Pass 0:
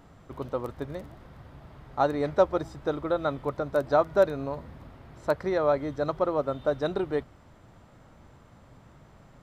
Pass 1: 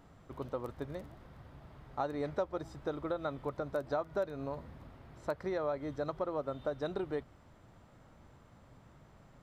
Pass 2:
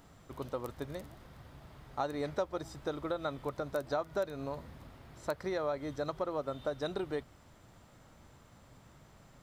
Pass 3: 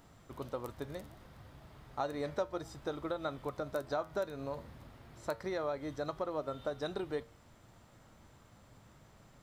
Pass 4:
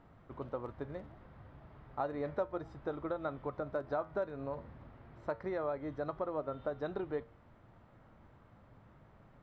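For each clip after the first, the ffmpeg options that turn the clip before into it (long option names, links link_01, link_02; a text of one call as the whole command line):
ffmpeg -i in.wav -af "acompressor=threshold=-27dB:ratio=3,volume=-5.5dB" out.wav
ffmpeg -i in.wav -af "highshelf=frequency=3200:gain=10.5" out.wav
ffmpeg -i in.wav -af "flanger=delay=8.6:depth=1.1:regen=83:speed=0.4:shape=sinusoidal,volume=3dB" out.wav
ffmpeg -i in.wav -af "lowpass=1900" out.wav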